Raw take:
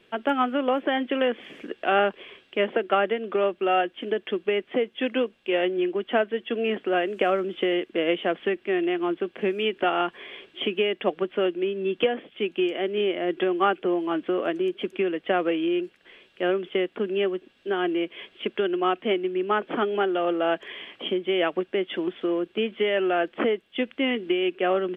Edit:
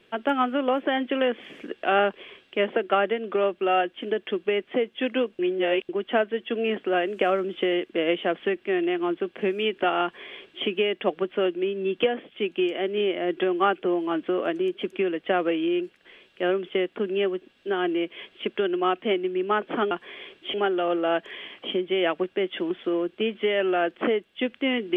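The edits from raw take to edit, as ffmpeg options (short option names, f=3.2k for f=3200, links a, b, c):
-filter_complex "[0:a]asplit=5[a][b][c][d][e];[a]atrim=end=5.392[f];[b]atrim=start=5.388:end=5.892,asetpts=PTS-STARTPTS,areverse[g];[c]atrim=start=5.888:end=19.912[h];[d]atrim=start=10.028:end=10.662[i];[e]atrim=start=19.908[j];[f][g]acrossfade=d=0.004:c1=hsin:c2=hsin[k];[k][h]acrossfade=d=0.004:c1=hsin:c2=hsin[l];[l][i]acrossfade=d=0.004:c1=hsin:c2=hsin[m];[m][j]acrossfade=d=0.004:c1=hsin:c2=hsin"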